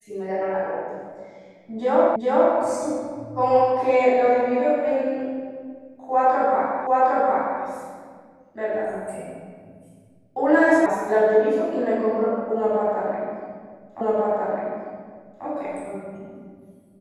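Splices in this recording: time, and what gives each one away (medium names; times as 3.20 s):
2.16 s: repeat of the last 0.41 s
6.87 s: repeat of the last 0.76 s
10.86 s: sound stops dead
14.01 s: repeat of the last 1.44 s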